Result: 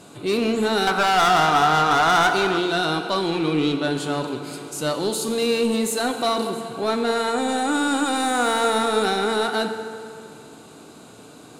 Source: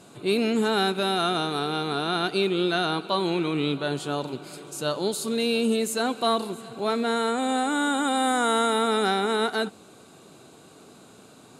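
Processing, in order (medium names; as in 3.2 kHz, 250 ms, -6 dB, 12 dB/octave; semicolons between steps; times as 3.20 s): 0.87–2.58 s: high-order bell 1.1 kHz +15 dB; saturation -20 dBFS, distortion -7 dB; FDN reverb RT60 2.3 s, low-frequency decay 0.95×, high-frequency decay 0.7×, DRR 6.5 dB; trim +4.5 dB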